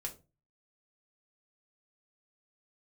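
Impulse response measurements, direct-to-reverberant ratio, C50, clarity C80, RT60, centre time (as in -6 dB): 0.5 dB, 13.5 dB, 20.5 dB, 0.30 s, 10 ms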